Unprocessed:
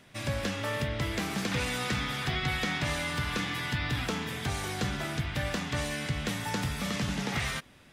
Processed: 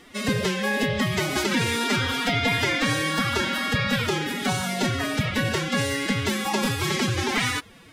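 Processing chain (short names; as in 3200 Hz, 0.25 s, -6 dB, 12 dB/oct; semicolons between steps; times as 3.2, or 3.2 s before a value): formant-preserving pitch shift +11 st; gain +8 dB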